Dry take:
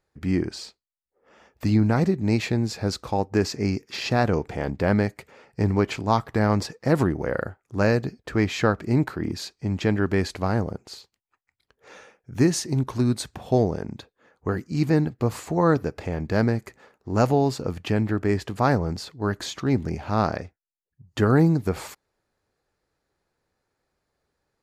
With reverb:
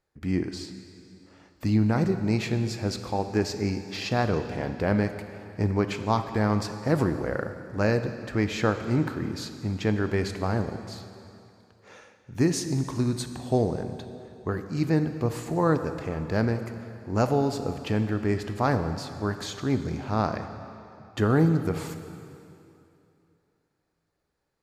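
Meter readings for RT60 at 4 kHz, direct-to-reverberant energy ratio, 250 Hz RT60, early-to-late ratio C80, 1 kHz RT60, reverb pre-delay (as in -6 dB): 2.4 s, 8.0 dB, 2.8 s, 10.0 dB, 2.8 s, 18 ms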